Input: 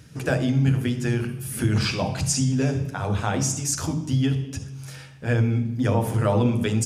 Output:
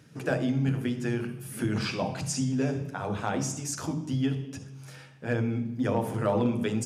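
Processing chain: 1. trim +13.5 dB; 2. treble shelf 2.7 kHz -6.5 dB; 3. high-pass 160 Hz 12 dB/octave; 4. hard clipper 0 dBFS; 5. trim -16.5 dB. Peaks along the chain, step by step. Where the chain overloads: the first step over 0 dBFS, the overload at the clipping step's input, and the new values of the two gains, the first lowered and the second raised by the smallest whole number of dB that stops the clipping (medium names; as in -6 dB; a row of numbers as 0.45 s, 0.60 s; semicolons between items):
+5.5 dBFS, +5.0 dBFS, +3.0 dBFS, 0.0 dBFS, -16.5 dBFS; step 1, 3.0 dB; step 1 +10.5 dB, step 5 -13.5 dB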